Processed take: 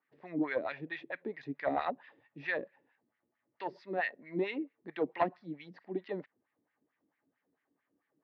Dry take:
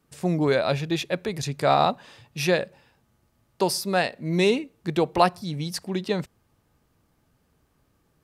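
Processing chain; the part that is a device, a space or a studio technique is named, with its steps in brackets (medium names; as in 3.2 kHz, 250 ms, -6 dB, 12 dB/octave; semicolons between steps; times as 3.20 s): wah-wah guitar rig (wah-wah 4.5 Hz 300–2100 Hz, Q 2.1; valve stage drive 12 dB, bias 0.4; cabinet simulation 100–4100 Hz, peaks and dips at 280 Hz +8 dB, 1.3 kHz -3 dB, 1.9 kHz +9 dB); trim -5 dB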